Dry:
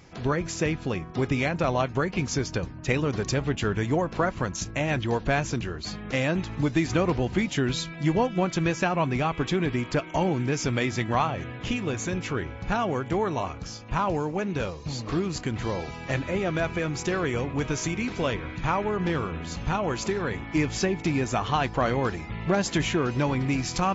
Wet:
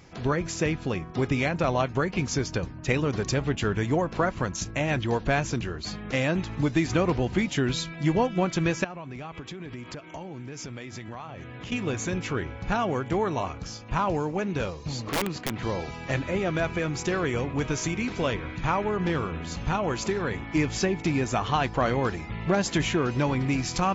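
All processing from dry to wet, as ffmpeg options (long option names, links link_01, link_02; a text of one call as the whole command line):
ffmpeg -i in.wav -filter_complex "[0:a]asettb=1/sr,asplit=3[link_01][link_02][link_03];[link_01]atrim=end=8.844[link_04];[link_02]atrim=start=8.84:end=11.72,asetpts=PTS-STARTPTS,afade=type=in:duration=0.004:curve=qsin,afade=type=out:start_time=2.876:duration=0.004:curve=qsin,highpass=47,tremolo=f=2.1:d=0.46,acompressor=threshold=-34dB:ratio=16:attack=3.2:release=140:knee=1:detection=peak[link_05];[link_03]atrim=start=11.716[link_06];[link_04][link_05]acrossfade=duration=0.004:curve1=hsin:curve2=qsin[link_07];[link_07][link_06]acrossfade=duration=0.004:curve1=qsin:curve2=hsin,asettb=1/sr,asplit=3[link_08][link_09][link_10];[link_08]atrim=end=15.094[link_11];[link_09]atrim=start=15.09:end=15.63,asetpts=PTS-STARTPTS,afade=type=in:duration=0.004:curve=qsin,afade=type=out:start_time=0.536:duration=0.004:curve=qsin,highpass=130,lowpass=4400,aeval=exprs='(mod(11.2*val(0)+1,2)-1)/11.2':channel_layout=same[link_12];[link_10]atrim=start=15.626[link_13];[link_11][link_12]acrossfade=duration=0.004:curve1=hsin:curve2=qsin[link_14];[link_14][link_13]acrossfade=duration=0.004:curve1=qsin:curve2=hsin" out.wav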